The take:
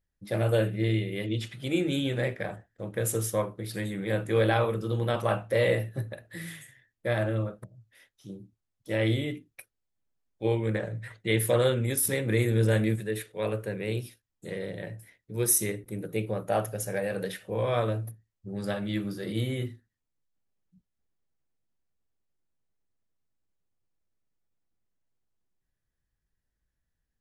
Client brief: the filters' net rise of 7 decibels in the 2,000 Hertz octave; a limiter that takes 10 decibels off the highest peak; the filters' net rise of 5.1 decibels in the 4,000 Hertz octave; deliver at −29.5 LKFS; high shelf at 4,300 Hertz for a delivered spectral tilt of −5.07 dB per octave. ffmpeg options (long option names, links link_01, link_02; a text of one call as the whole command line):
ffmpeg -i in.wav -af "equalizer=frequency=2000:width_type=o:gain=8,equalizer=frequency=4000:width_type=o:gain=7,highshelf=frequency=4300:gain=-7.5,volume=1dB,alimiter=limit=-16dB:level=0:latency=1" out.wav